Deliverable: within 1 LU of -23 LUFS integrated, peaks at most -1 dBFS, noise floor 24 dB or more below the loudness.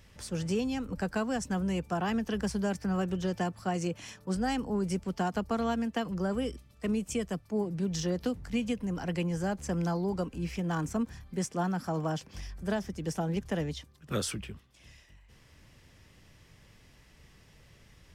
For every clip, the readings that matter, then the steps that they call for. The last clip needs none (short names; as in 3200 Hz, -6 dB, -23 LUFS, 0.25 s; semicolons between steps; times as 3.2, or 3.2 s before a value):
loudness -33.0 LUFS; peak -19.5 dBFS; loudness target -23.0 LUFS
-> gain +10 dB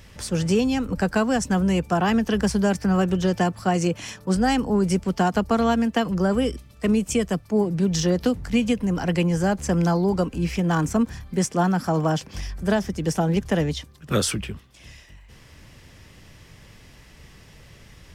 loudness -23.0 LUFS; peak -9.5 dBFS; noise floor -50 dBFS